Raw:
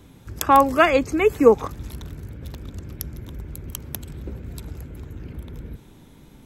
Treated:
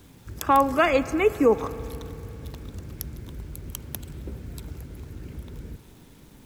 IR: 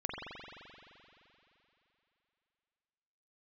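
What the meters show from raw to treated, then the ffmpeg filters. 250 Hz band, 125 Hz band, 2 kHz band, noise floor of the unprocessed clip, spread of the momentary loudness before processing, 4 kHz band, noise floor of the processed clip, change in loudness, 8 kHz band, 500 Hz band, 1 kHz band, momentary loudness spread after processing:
-3.0 dB, -2.5 dB, -4.0 dB, -49 dBFS, 21 LU, -4.0 dB, -51 dBFS, -6.0 dB, -4.0 dB, -4.0 dB, -4.0 dB, 20 LU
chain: -filter_complex "[0:a]acrusher=bits=8:mix=0:aa=0.000001,asplit=2[a][b];[1:a]atrim=start_sample=2205[c];[b][c]afir=irnorm=-1:irlink=0,volume=-18dB[d];[a][d]amix=inputs=2:normalize=0,alimiter=level_in=5dB:limit=-1dB:release=50:level=0:latency=1,volume=-8.5dB"

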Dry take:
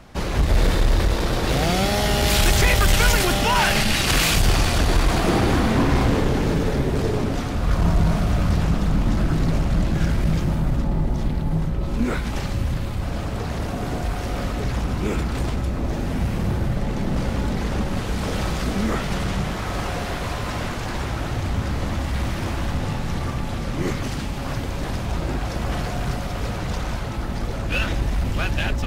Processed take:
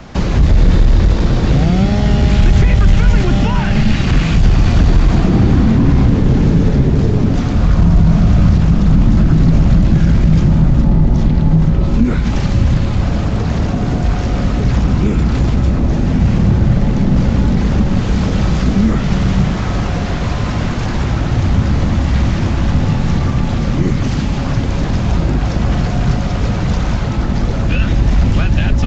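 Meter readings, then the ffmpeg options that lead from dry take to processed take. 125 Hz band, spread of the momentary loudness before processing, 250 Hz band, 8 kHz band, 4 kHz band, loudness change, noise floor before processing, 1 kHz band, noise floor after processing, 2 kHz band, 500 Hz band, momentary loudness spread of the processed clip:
+11.5 dB, 9 LU, +10.5 dB, n/a, -1.5 dB, +9.0 dB, -27 dBFS, +1.5 dB, -17 dBFS, 0.0 dB, +3.5 dB, 6 LU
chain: -filter_complex "[0:a]aresample=16000,aresample=44100,acrossover=split=3000[a][b];[b]acompressor=threshold=-32dB:ratio=4:attack=1:release=60[c];[a][c]amix=inputs=2:normalize=0,equalizer=f=190:w=0.9:g=3.5,acrossover=split=250[d][e];[e]acompressor=threshold=-34dB:ratio=4[f];[d][f]amix=inputs=2:normalize=0,alimiter=level_in=11.5dB:limit=-1dB:release=50:level=0:latency=1,volume=-1dB"

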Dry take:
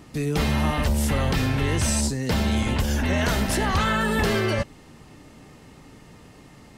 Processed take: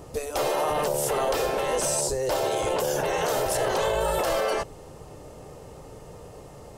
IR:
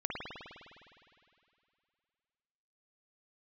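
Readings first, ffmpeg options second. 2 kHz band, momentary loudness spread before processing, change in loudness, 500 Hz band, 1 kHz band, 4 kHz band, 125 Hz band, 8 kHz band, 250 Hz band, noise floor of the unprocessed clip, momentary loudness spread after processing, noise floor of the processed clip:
-6.0 dB, 2 LU, -2.0 dB, +4.5 dB, +1.5 dB, -3.5 dB, -14.5 dB, +1.0 dB, -12.0 dB, -49 dBFS, 20 LU, -45 dBFS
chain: -af "afftfilt=real='re*lt(hypot(re,im),0.251)':imag='im*lt(hypot(re,im),0.251)':win_size=1024:overlap=0.75,equalizer=f=250:t=o:w=1:g=-12,equalizer=f=500:t=o:w=1:g=10,equalizer=f=2k:t=o:w=1:g=-10,equalizer=f=4k:t=o:w=1:g=-6,alimiter=limit=-21.5dB:level=0:latency=1:release=13,volume=5dB"

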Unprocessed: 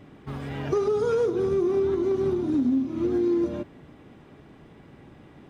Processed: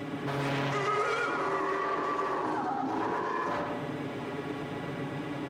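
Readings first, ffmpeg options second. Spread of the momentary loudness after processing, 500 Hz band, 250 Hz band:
7 LU, -9.0 dB, -9.5 dB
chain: -filter_complex "[0:a]alimiter=level_in=2.5dB:limit=-24dB:level=0:latency=1:release=89,volume=-2.5dB,aeval=exprs='0.0473*sin(PI/2*2.51*val(0)/0.0473)':c=same,acompressor=threshold=-34dB:ratio=4,highpass=f=300:p=1,aecho=1:1:7.1:0.53,asplit=2[a][b];[b]adelay=116,lowpass=f=3.5k:p=1,volume=-3dB,asplit=2[c][d];[d]adelay=116,lowpass=f=3.5k:p=1,volume=0.49,asplit=2[e][f];[f]adelay=116,lowpass=f=3.5k:p=1,volume=0.49,asplit=2[g][h];[h]adelay=116,lowpass=f=3.5k:p=1,volume=0.49,asplit=2[i][j];[j]adelay=116,lowpass=f=3.5k:p=1,volume=0.49,asplit=2[k][l];[l]adelay=116,lowpass=f=3.5k:p=1,volume=0.49[m];[a][c][e][g][i][k][m]amix=inputs=7:normalize=0,volume=3dB"

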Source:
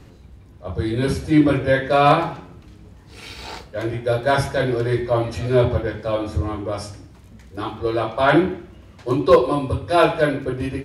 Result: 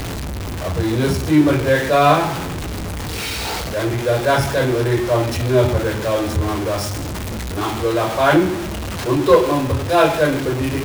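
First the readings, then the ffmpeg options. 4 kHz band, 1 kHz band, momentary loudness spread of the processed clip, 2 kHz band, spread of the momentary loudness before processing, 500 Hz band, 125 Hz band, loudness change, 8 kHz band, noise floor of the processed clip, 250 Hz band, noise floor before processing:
+6.0 dB, +2.5 dB, 12 LU, +3.0 dB, 18 LU, +2.0 dB, +3.5 dB, +1.5 dB, +12.5 dB, -26 dBFS, +2.5 dB, -46 dBFS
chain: -af "aeval=exprs='val(0)+0.5*0.0944*sgn(val(0))':c=same"

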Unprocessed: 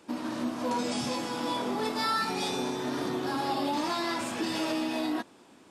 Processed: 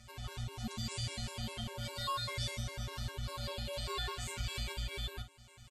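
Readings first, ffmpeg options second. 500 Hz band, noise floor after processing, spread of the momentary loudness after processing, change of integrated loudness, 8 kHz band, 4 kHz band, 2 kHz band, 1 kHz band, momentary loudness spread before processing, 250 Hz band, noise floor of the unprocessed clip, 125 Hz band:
-13.5 dB, -58 dBFS, 6 LU, -9.0 dB, -5.0 dB, -4.5 dB, -9.0 dB, -13.5 dB, 4 LU, -18.0 dB, -56 dBFS, +5.0 dB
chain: -filter_complex "[0:a]equalizer=f=690:w=1.1:g=-10.5,acompressor=threshold=-50dB:ratio=1.5,afftfilt=real='hypot(re,im)*cos(PI*b)':imag='0':win_size=1024:overlap=0.75,afreqshift=-290,asplit=2[a][b];[b]aecho=0:1:10|52:0.501|0.316[c];[a][c]amix=inputs=2:normalize=0,afftfilt=real='re*gt(sin(2*PI*5*pts/sr)*(1-2*mod(floor(b*sr/1024/290),2)),0)':imag='im*gt(sin(2*PI*5*pts/sr)*(1-2*mod(floor(b*sr/1024/290),2)),0)':win_size=1024:overlap=0.75,volume=8dB"

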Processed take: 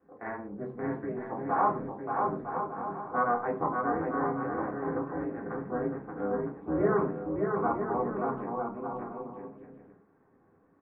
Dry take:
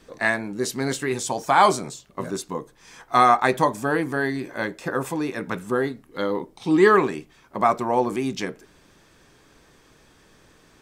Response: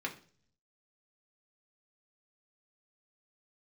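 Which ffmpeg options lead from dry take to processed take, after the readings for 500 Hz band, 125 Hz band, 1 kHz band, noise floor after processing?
-7.5 dB, -6.0 dB, -8.5 dB, -65 dBFS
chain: -filter_complex "[0:a]lowpass=f=1.2k:w=0.5412,lowpass=f=1.2k:w=1.3066,tremolo=f=240:d=0.889,aecho=1:1:580|957|1202|1361|1465:0.631|0.398|0.251|0.158|0.1[a];[1:a]atrim=start_sample=2205,afade=t=out:st=0.19:d=0.01,atrim=end_sample=8820[b];[a][b]afir=irnorm=-1:irlink=0,volume=-7.5dB"

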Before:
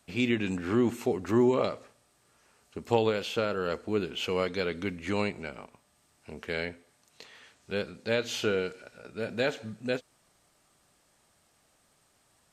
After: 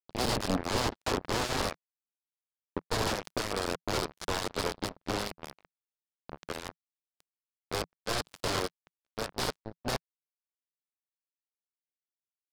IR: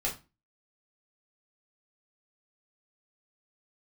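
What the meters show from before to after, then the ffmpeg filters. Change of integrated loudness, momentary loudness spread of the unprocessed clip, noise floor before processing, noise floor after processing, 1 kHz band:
-3.0 dB, 15 LU, -68 dBFS, under -85 dBFS, +2.0 dB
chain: -af "aresample=11025,aeval=exprs='(mod(18.8*val(0)+1,2)-1)/18.8':c=same,aresample=44100,aeval=exprs='val(0)+0.00282*(sin(2*PI*60*n/s)+sin(2*PI*2*60*n/s)/2+sin(2*PI*3*60*n/s)/3+sin(2*PI*4*60*n/s)/4+sin(2*PI*5*60*n/s)/5)':c=same,acontrast=74,equalizer=f=2.3k:t=o:w=1.6:g=-12.5,acrusher=bits=3:mix=0:aa=0.5,equalizer=f=170:t=o:w=0.25:g=-4.5,volume=-1.5dB"

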